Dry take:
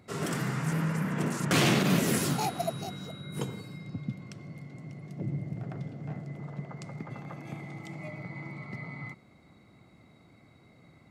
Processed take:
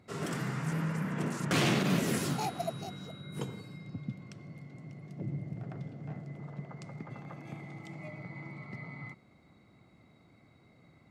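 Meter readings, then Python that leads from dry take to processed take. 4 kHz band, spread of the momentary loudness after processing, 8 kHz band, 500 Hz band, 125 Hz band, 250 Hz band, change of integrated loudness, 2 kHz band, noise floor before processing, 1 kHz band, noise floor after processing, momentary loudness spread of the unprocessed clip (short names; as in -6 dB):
-4.0 dB, 17 LU, -6.0 dB, -3.5 dB, -3.5 dB, -3.5 dB, -3.5 dB, -3.5 dB, -58 dBFS, -3.5 dB, -62 dBFS, 18 LU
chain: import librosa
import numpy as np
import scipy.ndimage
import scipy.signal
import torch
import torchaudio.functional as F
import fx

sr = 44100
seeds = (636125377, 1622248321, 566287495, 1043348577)

y = fx.high_shelf(x, sr, hz=9600.0, db=-6.5)
y = y * librosa.db_to_amplitude(-3.5)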